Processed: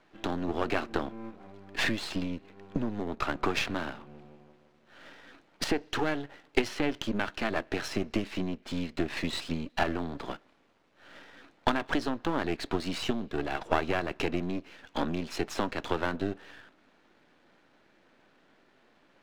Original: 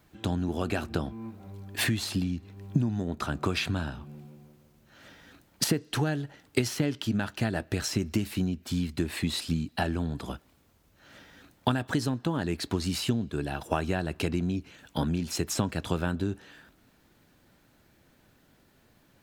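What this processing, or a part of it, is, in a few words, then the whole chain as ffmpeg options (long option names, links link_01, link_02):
crystal radio: -af "highpass=290,lowpass=3200,aeval=exprs='if(lt(val(0),0),0.251*val(0),val(0))':channel_layout=same,volume=6dB"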